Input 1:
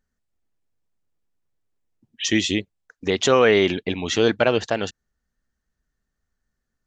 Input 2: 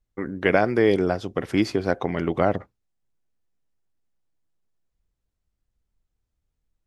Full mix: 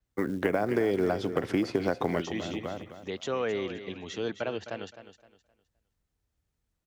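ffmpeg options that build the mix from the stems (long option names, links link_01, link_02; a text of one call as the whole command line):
ffmpeg -i stem1.wav -i stem2.wav -filter_complex "[0:a]volume=-14dB,asplit=3[link_01][link_02][link_03];[link_02]volume=-12.5dB[link_04];[1:a]acrusher=bits=7:mode=log:mix=0:aa=0.000001,acompressor=threshold=-20dB:ratio=6,volume=1.5dB,asplit=2[link_05][link_06];[link_06]volume=-12.5dB[link_07];[link_03]apad=whole_len=302834[link_08];[link_05][link_08]sidechaincompress=threshold=-54dB:ratio=5:attack=16:release=141[link_09];[link_04][link_07]amix=inputs=2:normalize=0,aecho=0:1:259|518|777|1036:1|0.28|0.0784|0.022[link_10];[link_01][link_09][link_10]amix=inputs=3:normalize=0,highpass=51,acrossover=split=210|1400|5700[link_11][link_12][link_13][link_14];[link_11]acompressor=threshold=-38dB:ratio=4[link_15];[link_12]acompressor=threshold=-23dB:ratio=4[link_16];[link_13]acompressor=threshold=-40dB:ratio=4[link_17];[link_14]acompressor=threshold=-50dB:ratio=4[link_18];[link_15][link_16][link_17][link_18]amix=inputs=4:normalize=0,adynamicequalizer=threshold=0.00178:dfrequency=6500:dqfactor=0.7:tfrequency=6500:tqfactor=0.7:attack=5:release=100:ratio=0.375:range=3:mode=cutabove:tftype=highshelf" out.wav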